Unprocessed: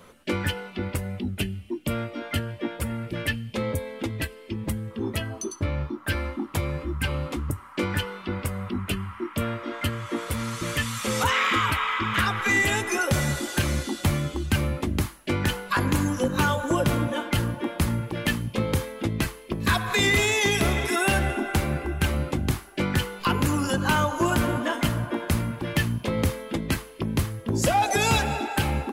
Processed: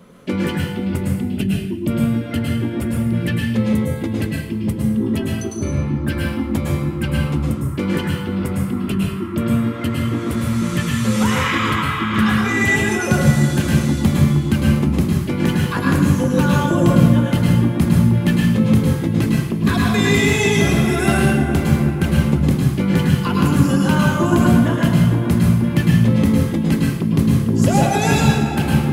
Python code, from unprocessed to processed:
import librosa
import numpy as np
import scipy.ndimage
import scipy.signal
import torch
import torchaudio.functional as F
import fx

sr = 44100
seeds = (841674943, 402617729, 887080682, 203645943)

y = fx.peak_eq(x, sr, hz=190.0, db=14.0, octaves=1.8)
y = fx.hum_notches(y, sr, base_hz=50, count=7)
y = fx.rev_plate(y, sr, seeds[0], rt60_s=0.67, hf_ratio=1.0, predelay_ms=95, drr_db=-2.0)
y = y * librosa.db_to_amplitude(-2.0)